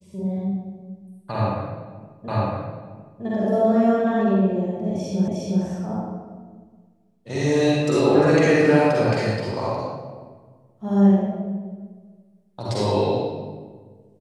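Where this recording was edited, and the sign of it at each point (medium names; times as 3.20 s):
2.28 s: repeat of the last 0.96 s
5.28 s: repeat of the last 0.36 s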